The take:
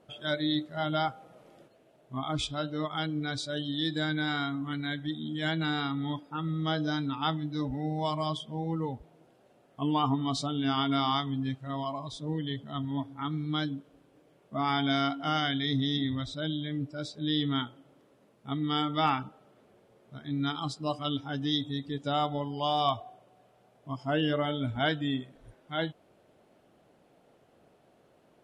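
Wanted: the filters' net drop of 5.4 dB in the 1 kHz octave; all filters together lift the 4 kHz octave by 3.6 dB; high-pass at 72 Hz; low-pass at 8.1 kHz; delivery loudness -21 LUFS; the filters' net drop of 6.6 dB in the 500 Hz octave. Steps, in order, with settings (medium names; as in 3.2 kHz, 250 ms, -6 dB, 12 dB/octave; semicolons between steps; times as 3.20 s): high-pass 72 Hz; low-pass 8.1 kHz; peaking EQ 500 Hz -7 dB; peaking EQ 1 kHz -5.5 dB; peaking EQ 4 kHz +5 dB; trim +11 dB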